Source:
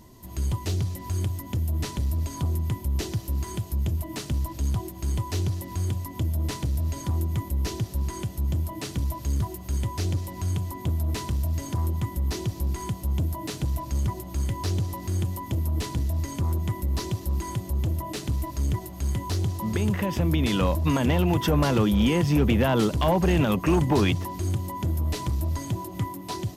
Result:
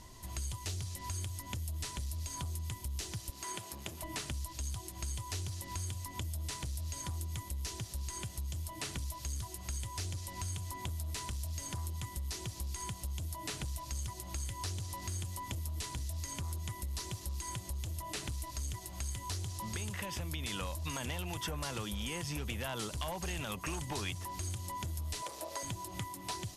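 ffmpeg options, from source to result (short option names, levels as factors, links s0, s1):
-filter_complex "[0:a]asettb=1/sr,asplit=3[s0][s1][s2];[s0]atrim=end=3.304[s3];[s1]atrim=start=3.3:end=4.03,asetpts=PTS-STARTPTS,afade=t=in:d=0.004:c=qsin,afade=t=out:st=0.726:d=0.004:c=qsin,highpass=280[s4];[s2]atrim=start=4.026[s5];[s3][s4]acrossfade=d=0.004:c1=hsin:c2=qsin[s6];[s6][s5]acrossfade=d=0.004:c1=qsin:c2=hsin,asettb=1/sr,asplit=3[s7][s8][s9];[s7]atrim=end=25.224[s10];[s8]atrim=start=25.22:end=25.63,asetpts=PTS-STARTPTS,afade=t=in:d=0.004:c=qsin,afade=t=out:st=0.406:d=0.004:c=qsin,highpass=f=510:t=q:w=3.6[s11];[s9]atrim=start=25.626[s12];[s10][s11]acrossfade=d=0.004:c1=hsin:c2=qsin[s13];[s13][s12]acrossfade=d=0.004:c1=qsin:c2=hsin,lowpass=f=11000:w=0.5412,lowpass=f=11000:w=1.3066,equalizer=f=250:w=0.43:g=-12.5,acrossover=split=3100|7200[s14][s15][s16];[s14]acompressor=threshold=0.00708:ratio=4[s17];[s15]acompressor=threshold=0.00251:ratio=4[s18];[s16]acompressor=threshold=0.00355:ratio=4[s19];[s17][s18][s19]amix=inputs=3:normalize=0,volume=1.5"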